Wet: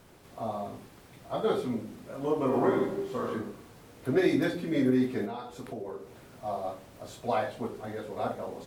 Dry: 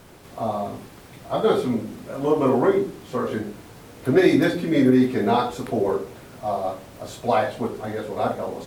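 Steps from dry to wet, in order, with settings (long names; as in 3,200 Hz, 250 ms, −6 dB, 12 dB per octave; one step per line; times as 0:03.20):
0:02.47–0:03.24: thrown reverb, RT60 0.91 s, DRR 0 dB
0:05.25–0:06.28: downward compressor 4 to 1, threshold −28 dBFS, peak gain reduction 11 dB
level −8.5 dB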